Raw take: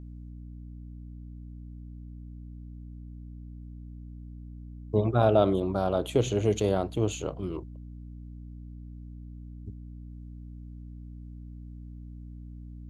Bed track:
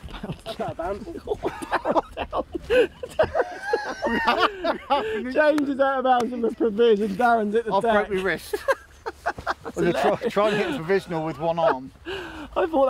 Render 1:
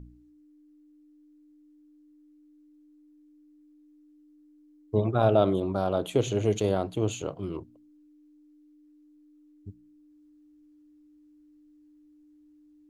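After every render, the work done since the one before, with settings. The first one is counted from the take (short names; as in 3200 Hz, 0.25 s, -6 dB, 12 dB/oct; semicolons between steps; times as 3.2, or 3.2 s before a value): de-hum 60 Hz, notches 4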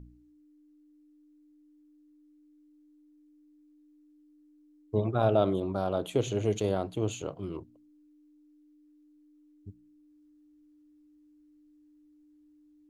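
gain -3 dB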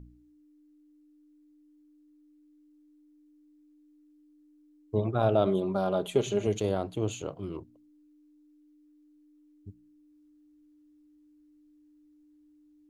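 5.46–6.47 comb 5 ms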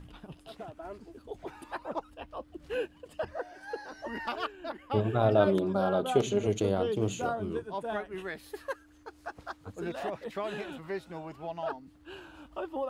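add bed track -14.5 dB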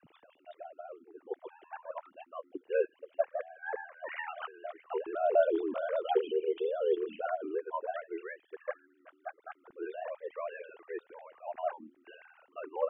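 sine-wave speech; ring modulator 40 Hz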